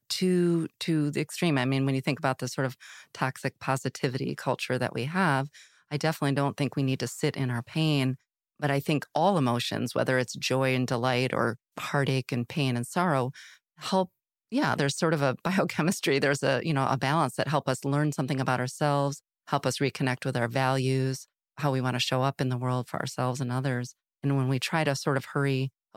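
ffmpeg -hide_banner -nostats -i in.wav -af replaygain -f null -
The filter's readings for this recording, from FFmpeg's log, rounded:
track_gain = +9.2 dB
track_peak = 0.207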